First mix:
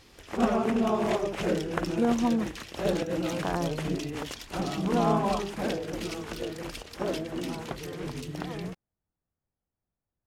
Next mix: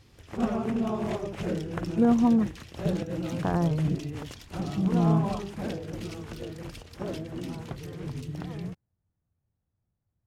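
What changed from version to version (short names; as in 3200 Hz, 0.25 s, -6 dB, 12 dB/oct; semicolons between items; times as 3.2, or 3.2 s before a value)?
background -6.5 dB; master: add bell 100 Hz +14 dB 1.8 oct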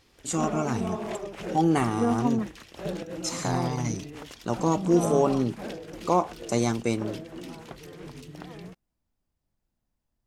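first voice: unmuted; master: add bell 100 Hz -14 dB 1.8 oct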